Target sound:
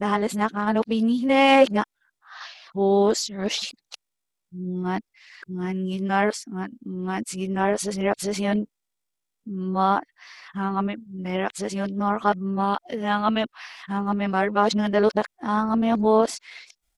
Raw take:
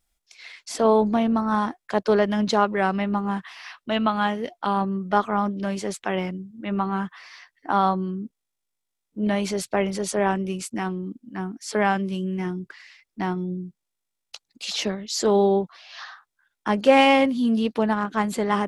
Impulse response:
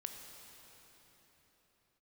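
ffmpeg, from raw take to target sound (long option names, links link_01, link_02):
-af "areverse,atempo=1.1"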